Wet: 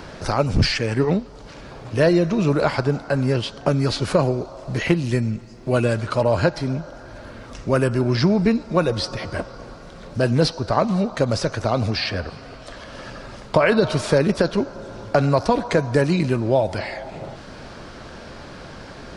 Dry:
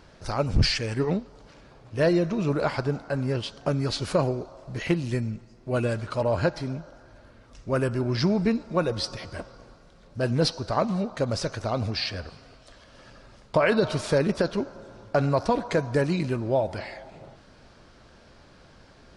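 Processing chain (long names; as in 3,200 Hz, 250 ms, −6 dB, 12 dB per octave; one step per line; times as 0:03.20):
multiband upward and downward compressor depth 40%
level +6 dB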